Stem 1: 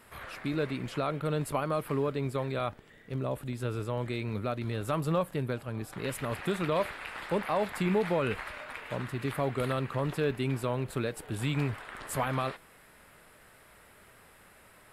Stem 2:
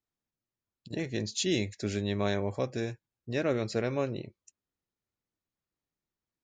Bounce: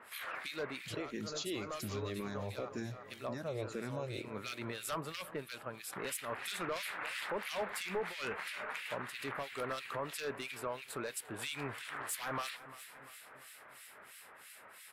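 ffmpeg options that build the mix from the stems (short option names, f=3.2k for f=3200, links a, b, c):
-filter_complex "[0:a]highpass=f=1.2k:p=1,aeval=exprs='0.0841*sin(PI/2*2.51*val(0)/0.0841)':c=same,acrossover=split=1900[a][b];[a]aeval=exprs='val(0)*(1-1/2+1/2*cos(2*PI*3*n/s))':c=same[c];[b]aeval=exprs='val(0)*(1-1/2-1/2*cos(2*PI*3*n/s))':c=same[d];[c][d]amix=inputs=2:normalize=0,volume=-2.5dB,asplit=2[e][f];[f]volume=-19dB[g];[1:a]alimiter=level_in=0.5dB:limit=-24dB:level=0:latency=1:release=190,volume=-0.5dB,asplit=2[h][i];[i]afreqshift=-1.9[j];[h][j]amix=inputs=2:normalize=1,volume=-1dB,asplit=3[k][l][m];[l]volume=-19dB[n];[m]apad=whole_len=658381[o];[e][o]sidechaincompress=threshold=-49dB:ratio=8:attack=41:release=229[p];[g][n]amix=inputs=2:normalize=0,aecho=0:1:345|690|1035|1380|1725|2070|2415|2760:1|0.54|0.292|0.157|0.085|0.0459|0.0248|0.0134[q];[p][k][q]amix=inputs=3:normalize=0,alimiter=level_in=5.5dB:limit=-24dB:level=0:latency=1:release=455,volume=-5.5dB"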